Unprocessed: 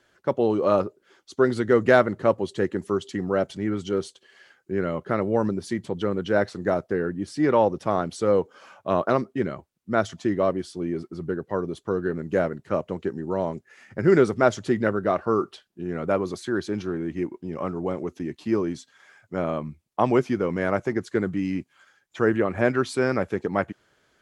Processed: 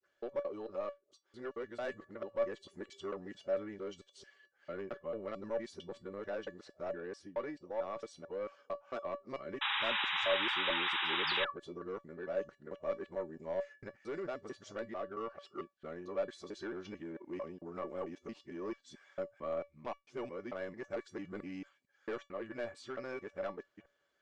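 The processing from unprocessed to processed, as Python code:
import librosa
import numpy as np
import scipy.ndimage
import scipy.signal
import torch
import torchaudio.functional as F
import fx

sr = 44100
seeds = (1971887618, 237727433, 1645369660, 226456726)

y = fx.local_reverse(x, sr, ms=223.0)
y = scipy.signal.sosfilt(scipy.signal.butter(4, 7900.0, 'lowpass', fs=sr, output='sos'), y)
y = fx.bass_treble(y, sr, bass_db=-9, treble_db=-3)
y = fx.rider(y, sr, range_db=5, speed_s=0.5)
y = 10.0 ** (-17.0 / 20.0) * np.tanh(y / 10.0 ** (-17.0 / 20.0))
y = fx.spec_paint(y, sr, seeds[0], shape='fall', start_s=11.27, length_s=0.24, low_hz=1000.0, high_hz=5300.0, level_db=-26.0)
y = fx.comb_fb(y, sr, f0_hz=570.0, decay_s=0.17, harmonics='all', damping=0.0, mix_pct=80)
y = fx.spec_paint(y, sr, seeds[1], shape='noise', start_s=9.61, length_s=1.84, low_hz=780.0, high_hz=3900.0, level_db=-31.0)
y = F.gain(torch.from_numpy(y), -3.5).numpy()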